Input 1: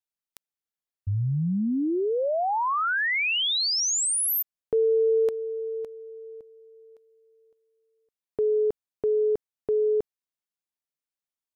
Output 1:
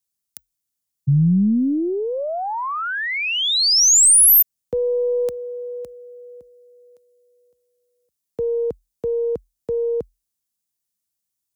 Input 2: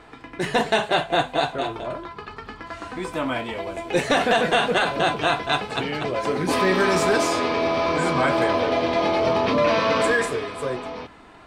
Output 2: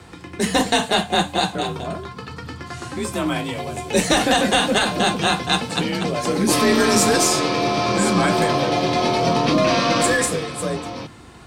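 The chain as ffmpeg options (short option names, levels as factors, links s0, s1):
-af "bass=f=250:g=11,treble=f=4000:g=14,afreqshift=41,aeval=exprs='0.75*(cos(1*acos(clip(val(0)/0.75,-1,1)))-cos(1*PI/2))+0.0335*(cos(4*acos(clip(val(0)/0.75,-1,1)))-cos(4*PI/2))+0.0168*(cos(6*acos(clip(val(0)/0.75,-1,1)))-cos(6*PI/2))+0.00531*(cos(8*acos(clip(val(0)/0.75,-1,1)))-cos(8*PI/2))':c=same"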